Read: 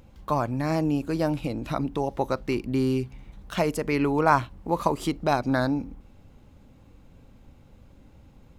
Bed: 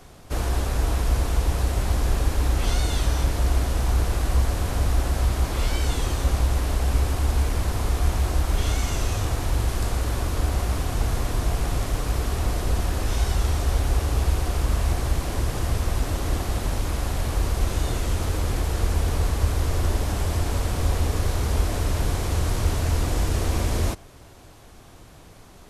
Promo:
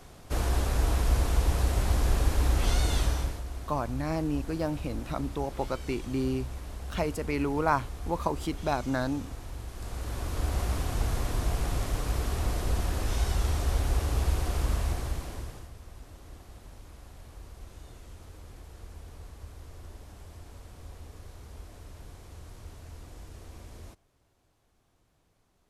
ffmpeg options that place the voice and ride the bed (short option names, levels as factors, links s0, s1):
-filter_complex "[0:a]adelay=3400,volume=0.531[s0];[1:a]volume=2.66,afade=t=out:st=2.98:d=0.45:silence=0.211349,afade=t=in:st=9.73:d=0.88:silence=0.266073,afade=t=out:st=14.67:d=1.03:silence=0.125893[s1];[s0][s1]amix=inputs=2:normalize=0"